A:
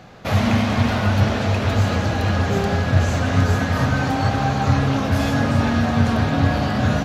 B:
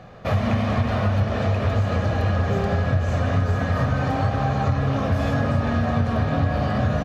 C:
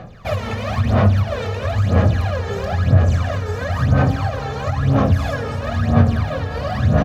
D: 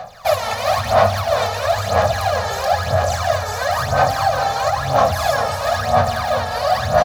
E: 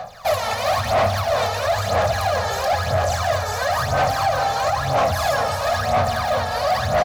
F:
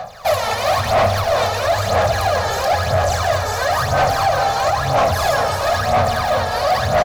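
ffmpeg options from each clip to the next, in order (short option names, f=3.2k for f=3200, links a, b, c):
-af "highshelf=f=3.1k:g=-11.5,aecho=1:1:1.7:0.34,acompressor=threshold=-17dB:ratio=6"
-af "aphaser=in_gain=1:out_gain=1:delay=2.3:decay=0.73:speed=1:type=sinusoidal,highshelf=f=4.1k:g=6,volume=-2.5dB"
-af "lowshelf=f=480:t=q:w=3:g=-12.5,aexciter=amount=2.6:drive=6.2:freq=3.9k,aecho=1:1:399:0.376,volume=3.5dB"
-af "asoftclip=type=tanh:threshold=-13dB"
-filter_complex "[0:a]asplit=6[a][b][c][d][e][f];[b]adelay=101,afreqshift=-73,volume=-16dB[g];[c]adelay=202,afreqshift=-146,volume=-20.9dB[h];[d]adelay=303,afreqshift=-219,volume=-25.8dB[i];[e]adelay=404,afreqshift=-292,volume=-30.6dB[j];[f]adelay=505,afreqshift=-365,volume=-35.5dB[k];[a][g][h][i][j][k]amix=inputs=6:normalize=0,volume=3dB"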